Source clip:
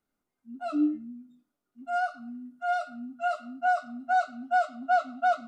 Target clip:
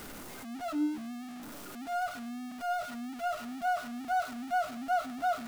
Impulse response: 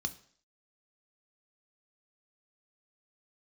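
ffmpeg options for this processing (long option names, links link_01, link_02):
-af "aeval=exprs='val(0)+0.5*0.0282*sgn(val(0))':channel_layout=same,volume=-7dB"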